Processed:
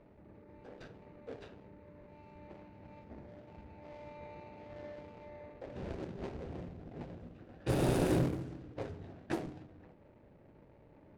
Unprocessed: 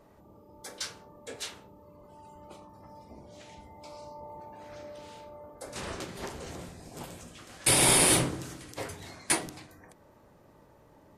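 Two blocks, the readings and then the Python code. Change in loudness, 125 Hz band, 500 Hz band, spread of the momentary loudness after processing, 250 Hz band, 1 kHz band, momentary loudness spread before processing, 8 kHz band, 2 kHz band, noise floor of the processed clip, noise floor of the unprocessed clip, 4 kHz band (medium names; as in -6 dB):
-12.0 dB, 0.0 dB, -2.5 dB, 23 LU, -1.0 dB, -9.5 dB, 25 LU, -27.0 dB, -14.5 dB, -61 dBFS, -59 dBFS, -20.0 dB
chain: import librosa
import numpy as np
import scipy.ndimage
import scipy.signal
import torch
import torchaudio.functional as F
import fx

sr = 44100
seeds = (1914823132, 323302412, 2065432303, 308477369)

y = scipy.ndimage.median_filter(x, 41, mode='constant')
y = fx.env_lowpass(y, sr, base_hz=2800.0, full_db=-29.5)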